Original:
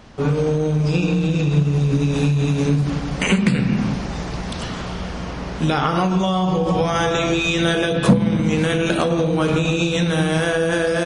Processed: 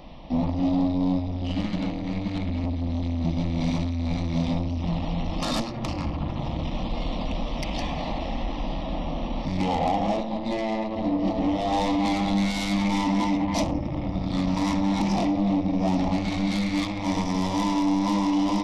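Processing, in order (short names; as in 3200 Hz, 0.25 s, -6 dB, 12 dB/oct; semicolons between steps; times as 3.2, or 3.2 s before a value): soft clip -22.5 dBFS, distortion -8 dB; wide varispeed 0.593×; fixed phaser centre 410 Hz, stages 6; gain +5 dB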